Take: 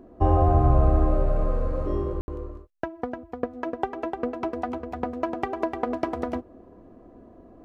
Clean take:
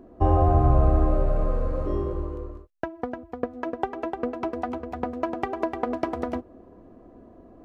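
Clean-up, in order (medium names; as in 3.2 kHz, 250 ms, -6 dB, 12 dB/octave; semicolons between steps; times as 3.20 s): room tone fill 2.21–2.28 s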